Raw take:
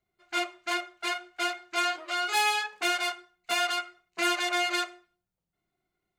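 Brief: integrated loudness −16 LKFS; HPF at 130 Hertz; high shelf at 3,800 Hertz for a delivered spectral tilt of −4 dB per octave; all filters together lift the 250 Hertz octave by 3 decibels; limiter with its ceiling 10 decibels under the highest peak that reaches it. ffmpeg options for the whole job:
ffmpeg -i in.wav -af "highpass=130,equalizer=frequency=250:width_type=o:gain=6,highshelf=frequency=3800:gain=-3.5,volume=16.5dB,alimiter=limit=-5dB:level=0:latency=1" out.wav

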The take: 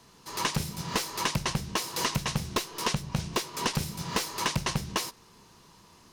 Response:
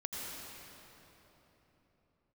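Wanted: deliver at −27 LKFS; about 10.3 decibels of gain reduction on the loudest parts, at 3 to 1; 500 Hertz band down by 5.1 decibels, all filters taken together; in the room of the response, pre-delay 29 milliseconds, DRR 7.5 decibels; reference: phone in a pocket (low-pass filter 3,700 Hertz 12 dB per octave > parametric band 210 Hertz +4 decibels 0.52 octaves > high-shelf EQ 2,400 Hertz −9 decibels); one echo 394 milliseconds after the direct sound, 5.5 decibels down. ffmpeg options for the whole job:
-filter_complex "[0:a]equalizer=frequency=500:width_type=o:gain=-6.5,acompressor=threshold=-39dB:ratio=3,aecho=1:1:394:0.531,asplit=2[link_01][link_02];[1:a]atrim=start_sample=2205,adelay=29[link_03];[link_02][link_03]afir=irnorm=-1:irlink=0,volume=-9.5dB[link_04];[link_01][link_04]amix=inputs=2:normalize=0,lowpass=3700,equalizer=frequency=210:width_type=o:width=0.52:gain=4,highshelf=frequency=2400:gain=-9,volume=14.5dB"

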